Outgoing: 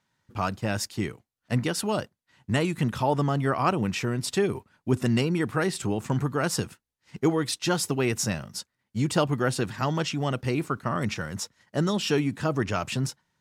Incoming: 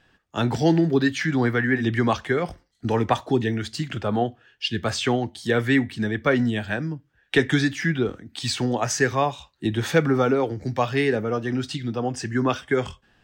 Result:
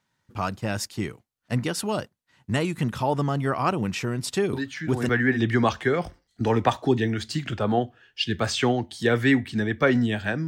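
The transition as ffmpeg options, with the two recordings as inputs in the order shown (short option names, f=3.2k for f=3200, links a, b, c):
-filter_complex "[1:a]asplit=2[a][b];[0:a]apad=whole_dur=10.47,atrim=end=10.47,atrim=end=5.092[c];[b]atrim=start=1.528:end=6.91[d];[a]atrim=start=0.97:end=1.53,asetpts=PTS-STARTPTS,volume=-9dB,afade=t=in:d=0.004:c=hsin,afade=t=out:st=0.556:d=0.004:c=hsin,adelay=199773S[e];[c][d]acrossfade=d=0.004:c1=hsin:c2=hsin[f];[f][e]amix=inputs=2:normalize=0"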